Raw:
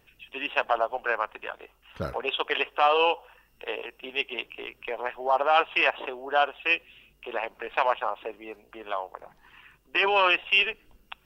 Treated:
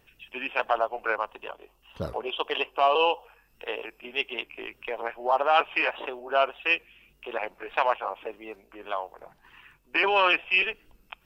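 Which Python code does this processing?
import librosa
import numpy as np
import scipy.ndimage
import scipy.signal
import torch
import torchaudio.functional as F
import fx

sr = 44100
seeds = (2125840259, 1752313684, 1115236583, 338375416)

y = fx.pitch_trill(x, sr, semitones=-1.0, every_ms=295)
y = fx.spec_box(y, sr, start_s=1.15, length_s=2.11, low_hz=1200.0, high_hz=2600.0, gain_db=-7)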